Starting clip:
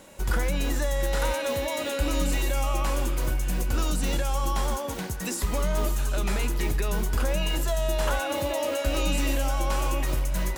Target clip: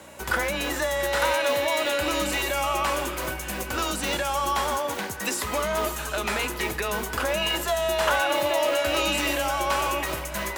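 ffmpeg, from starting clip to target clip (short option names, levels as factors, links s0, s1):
-filter_complex "[0:a]aeval=exprs='val(0)+0.00501*(sin(2*PI*60*n/s)+sin(2*PI*2*60*n/s)/2+sin(2*PI*3*60*n/s)/3+sin(2*PI*4*60*n/s)/4+sin(2*PI*5*60*n/s)/5)':c=same,afreqshift=15,asplit=2[s0][s1];[s1]adynamicsmooth=sensitivity=4.5:basefreq=2800,volume=1[s2];[s0][s2]amix=inputs=2:normalize=0,highpass=f=890:p=1,volume=1.5"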